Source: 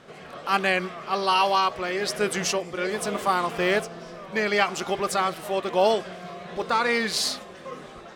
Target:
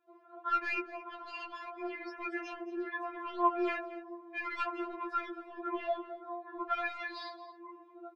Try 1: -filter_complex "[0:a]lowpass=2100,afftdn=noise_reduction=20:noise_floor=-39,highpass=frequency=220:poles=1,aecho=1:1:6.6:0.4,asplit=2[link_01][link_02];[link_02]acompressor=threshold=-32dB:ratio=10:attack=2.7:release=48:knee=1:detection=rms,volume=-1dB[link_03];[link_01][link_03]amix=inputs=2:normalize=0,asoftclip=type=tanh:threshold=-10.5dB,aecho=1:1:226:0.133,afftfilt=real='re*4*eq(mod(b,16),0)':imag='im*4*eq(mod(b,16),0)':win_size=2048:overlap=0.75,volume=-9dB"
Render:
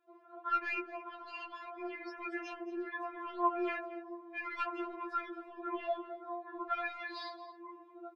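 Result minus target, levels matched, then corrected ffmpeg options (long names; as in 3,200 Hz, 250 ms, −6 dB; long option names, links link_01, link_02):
downward compressor: peak gain reduction +10 dB
-filter_complex "[0:a]lowpass=2100,afftdn=noise_reduction=20:noise_floor=-39,highpass=frequency=220:poles=1,aecho=1:1:6.6:0.4,asplit=2[link_01][link_02];[link_02]acompressor=threshold=-21dB:ratio=10:attack=2.7:release=48:knee=1:detection=rms,volume=-1dB[link_03];[link_01][link_03]amix=inputs=2:normalize=0,asoftclip=type=tanh:threshold=-10.5dB,aecho=1:1:226:0.133,afftfilt=real='re*4*eq(mod(b,16),0)':imag='im*4*eq(mod(b,16),0)':win_size=2048:overlap=0.75,volume=-9dB"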